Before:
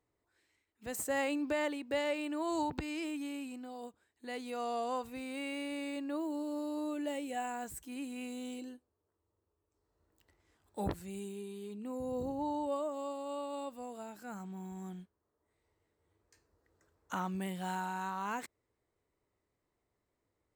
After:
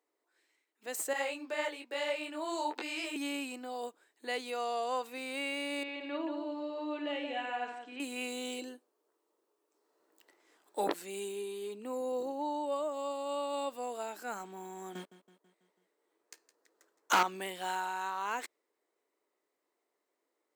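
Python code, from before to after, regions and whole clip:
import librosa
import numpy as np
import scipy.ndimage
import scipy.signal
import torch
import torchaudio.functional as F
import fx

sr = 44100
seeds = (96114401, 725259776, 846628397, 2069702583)

y = fx.chain(x, sr, fx.highpass(hz=350.0, slope=12),
    fx.detune_double(cents=37), at=(1.13, 3.16))
y = fx.chain(y, sr, fx.ladder_lowpass(hz=4000.0, resonance_pct=30),
    fx.echo_multitap(ms=(52, 176, 253), db=(-6.5, -6.0, -17.0)), at=(5.83, 8.0))
y = fx.chain(y, sr, fx.leveller(passes=3),
    fx.echo_feedback(ms=164, feedback_pct=55, wet_db=-15.5), at=(14.95, 17.23))
y = scipy.signal.sosfilt(scipy.signal.butter(4, 310.0, 'highpass', fs=sr, output='sos'), y)
y = fx.dynamic_eq(y, sr, hz=3400.0, q=0.71, threshold_db=-57.0, ratio=4.0, max_db=4)
y = fx.rider(y, sr, range_db=3, speed_s=0.5)
y = y * librosa.db_to_amplitude(4.0)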